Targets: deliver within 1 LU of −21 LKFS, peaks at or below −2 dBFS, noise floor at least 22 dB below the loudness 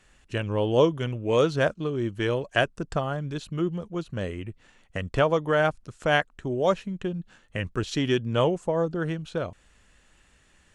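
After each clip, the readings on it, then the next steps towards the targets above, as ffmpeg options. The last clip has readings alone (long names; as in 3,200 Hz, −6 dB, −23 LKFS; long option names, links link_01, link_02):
integrated loudness −27.0 LKFS; sample peak −6.5 dBFS; target loudness −21.0 LKFS
→ -af "volume=6dB,alimiter=limit=-2dB:level=0:latency=1"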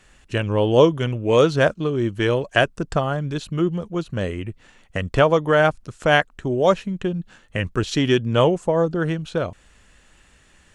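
integrated loudness −21.0 LKFS; sample peak −2.0 dBFS; background noise floor −55 dBFS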